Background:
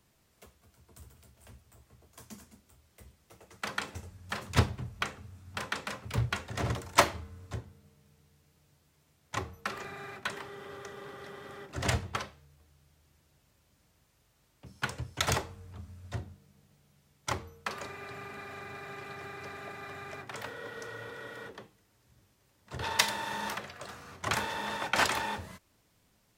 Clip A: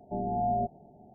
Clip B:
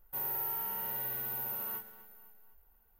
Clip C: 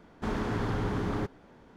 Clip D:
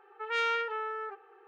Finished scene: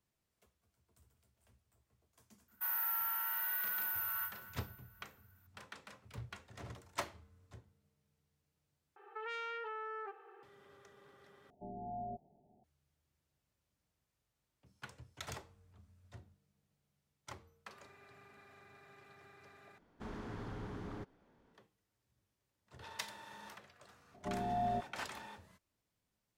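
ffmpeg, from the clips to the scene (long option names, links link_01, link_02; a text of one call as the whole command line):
ffmpeg -i bed.wav -i cue0.wav -i cue1.wav -i cue2.wav -i cue3.wav -filter_complex "[1:a]asplit=2[link_01][link_02];[0:a]volume=-17dB[link_03];[2:a]highpass=frequency=1400:width_type=q:width=3.3[link_04];[4:a]acompressor=threshold=-42dB:ratio=6:attack=7.1:release=36:knee=1:detection=peak[link_05];[link_03]asplit=4[link_06][link_07][link_08][link_09];[link_06]atrim=end=8.964[link_10];[link_05]atrim=end=1.47,asetpts=PTS-STARTPTS,volume=-1dB[link_11];[link_07]atrim=start=10.426:end=11.504[link_12];[link_01]atrim=end=1.14,asetpts=PTS-STARTPTS,volume=-15dB[link_13];[link_08]atrim=start=12.636:end=19.784[link_14];[3:a]atrim=end=1.76,asetpts=PTS-STARTPTS,volume=-14.5dB[link_15];[link_09]atrim=start=21.536[link_16];[link_04]atrim=end=2.99,asetpts=PTS-STARTPTS,volume=-1dB,afade=type=in:duration=0.004:curve=hsin,afade=type=out:start_time=2.986:duration=0.004:curve=hsin,adelay=2480[link_17];[link_02]atrim=end=1.14,asetpts=PTS-STARTPTS,volume=-7dB,afade=type=in:duration=0.004:curve=hsin,afade=type=out:start_time=1.136:duration=0.004:curve=hsin,adelay=24140[link_18];[link_10][link_11]acrossfade=duration=0.004:curve1=hsin:curve2=hsin[link_19];[link_19][link_12]acrossfade=duration=0.004:curve1=hsin:curve2=hsin[link_20];[link_20][link_13]acrossfade=duration=0.004:curve1=hsin:curve2=hsin[link_21];[link_21][link_14]acrossfade=duration=0.004:curve1=hsin:curve2=hsin[link_22];[link_22][link_15]acrossfade=duration=0.004:curve1=hsin:curve2=hsin[link_23];[link_23][link_16]acrossfade=duration=0.004:curve1=hsin:curve2=hsin[link_24];[link_24][link_17][link_18]amix=inputs=3:normalize=0" out.wav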